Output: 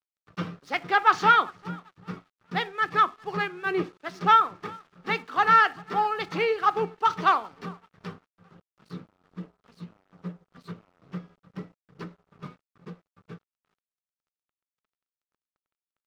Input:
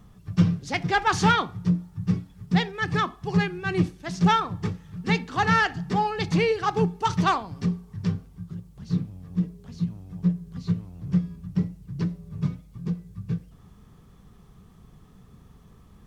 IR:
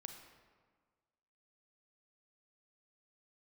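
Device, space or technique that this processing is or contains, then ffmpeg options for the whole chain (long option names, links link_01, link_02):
pocket radio on a weak battery: -filter_complex "[0:a]asettb=1/sr,asplit=3[link_01][link_02][link_03];[link_01]atrim=end=3.644[link_04];[link_02]atrim=start=3.64:end=4.06,asetpts=PTS-STARTPTS,afade=type=in:duration=0.004:curve=qsin,afade=type=out:start_time=0.416:duration=0.004:curve=qsin,equalizer=frequency=430:width_type=o:width=0.48:gain=9[link_05];[link_03]atrim=start=4.056[link_06];[link_04][link_05]acrossfade=duration=0.004:curve1=hsin:curve2=qsin[link_07];[link_07][link_06]acrossfade=duration=0.004:curve1=qsin:curve2=hsin,highpass=380,lowpass=3600,asplit=2[link_08][link_09];[link_09]adelay=394,lowpass=frequency=4100:poles=1,volume=-23dB,asplit=2[link_10][link_11];[link_11]adelay=394,lowpass=frequency=4100:poles=1,volume=0.41,asplit=2[link_12][link_13];[link_13]adelay=394,lowpass=frequency=4100:poles=1,volume=0.41[link_14];[link_08][link_10][link_12][link_14]amix=inputs=4:normalize=0,aeval=exprs='sgn(val(0))*max(abs(val(0))-0.00211,0)':channel_layout=same,equalizer=frequency=1300:width_type=o:width=0.27:gain=8"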